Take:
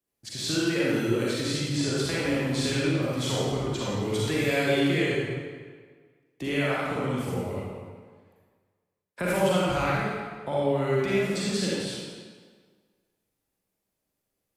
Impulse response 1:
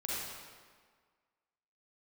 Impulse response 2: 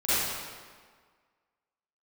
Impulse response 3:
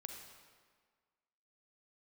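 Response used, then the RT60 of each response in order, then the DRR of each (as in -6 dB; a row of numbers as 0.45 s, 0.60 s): 1; 1.7 s, 1.7 s, 1.7 s; -7.0 dB, -15.5 dB, 3.0 dB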